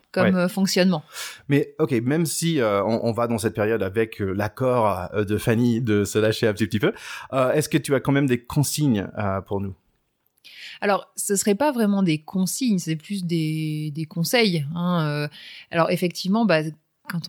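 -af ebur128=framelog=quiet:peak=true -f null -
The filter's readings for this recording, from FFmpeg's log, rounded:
Integrated loudness:
  I:         -22.5 LUFS
  Threshold: -32.9 LUFS
Loudness range:
  LRA:         2.5 LU
  Threshold: -43.0 LUFS
  LRA low:   -24.5 LUFS
  LRA high:  -21.9 LUFS
True peak:
  Peak:       -5.3 dBFS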